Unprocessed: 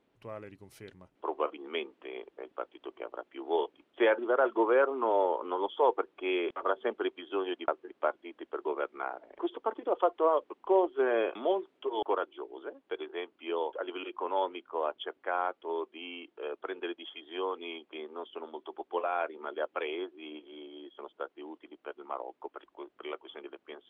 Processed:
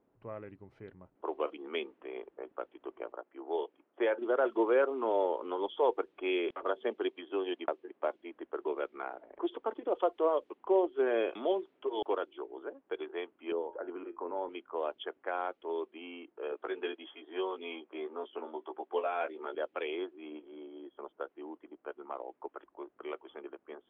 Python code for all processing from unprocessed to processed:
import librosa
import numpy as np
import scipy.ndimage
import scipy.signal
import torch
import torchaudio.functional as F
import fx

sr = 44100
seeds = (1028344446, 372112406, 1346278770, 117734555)

y = fx.chain(x, sr, fx.highpass(hz=410.0, slope=6),
    fx.high_shelf(hz=2500.0, db=-11.0), at=(3.12, 4.22))
y = fx.chain(y, sr, fx.highpass(hz=160.0, slope=12),
    fx.peak_eq(hz=1400.0, db=-5.0, octaves=0.27), at=(6.75, 8.2))
y = fx.chain(y, sr, fx.highpass(hz=46.0, slope=12),
    fx.air_absorb(metres=98.0), at=(10.54, 11.07))
y = fx.chain(y, sr, fx.lowpass(hz=2000.0, slope=24),
    fx.low_shelf(hz=290.0, db=10.0),
    fx.comb_fb(f0_hz=85.0, decay_s=0.28, harmonics='all', damping=0.0, mix_pct=60), at=(13.52, 14.49))
y = fx.chain(y, sr, fx.highpass(hz=210.0, slope=12),
    fx.doubler(ms=16.0, db=-3.5), at=(16.51, 19.55))
y = fx.env_lowpass(y, sr, base_hz=1200.0, full_db=-24.5)
y = fx.dynamic_eq(y, sr, hz=1100.0, q=0.96, threshold_db=-42.0, ratio=4.0, max_db=-6)